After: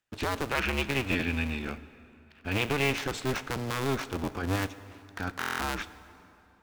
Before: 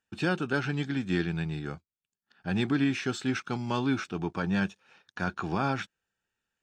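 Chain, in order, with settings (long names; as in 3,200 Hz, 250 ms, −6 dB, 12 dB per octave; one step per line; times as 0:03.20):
sub-harmonics by changed cycles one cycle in 2, inverted
brickwall limiter −20.5 dBFS, peak gain reduction 4.5 dB
0:00.50–0:02.93: parametric band 2,500 Hz +12.5 dB 0.53 octaves
dense smooth reverb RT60 2.9 s, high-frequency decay 0.7×, DRR 14 dB
buffer that repeats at 0:05.39, samples 1,024, times 8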